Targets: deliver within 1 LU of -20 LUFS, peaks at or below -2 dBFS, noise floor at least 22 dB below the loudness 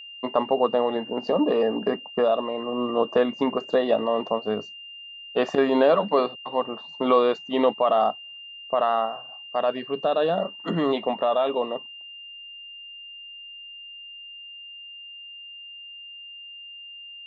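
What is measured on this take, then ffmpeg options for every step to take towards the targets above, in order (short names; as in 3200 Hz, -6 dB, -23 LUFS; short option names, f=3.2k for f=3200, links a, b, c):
steady tone 2800 Hz; tone level -39 dBFS; loudness -24.0 LUFS; peak -7.5 dBFS; loudness target -20.0 LUFS
-> -af "bandreject=f=2.8k:w=30"
-af "volume=4dB"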